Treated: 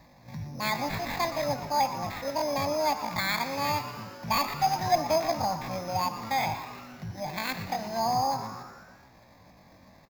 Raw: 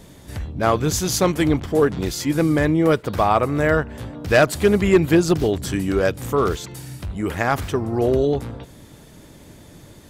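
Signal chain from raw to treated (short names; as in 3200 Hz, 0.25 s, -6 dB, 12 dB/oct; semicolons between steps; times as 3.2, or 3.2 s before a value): added harmonics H 5 -42 dB, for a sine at -6.5 dBFS; sample-rate reducer 3000 Hz, jitter 0%; pitch shift +11 st; fixed phaser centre 2000 Hz, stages 8; on a send: frequency-shifting echo 0.118 s, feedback 60%, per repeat +140 Hz, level -14 dB; on the sum: Schroeder reverb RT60 1.2 s, combs from 31 ms, DRR 12 dB; gain -7.5 dB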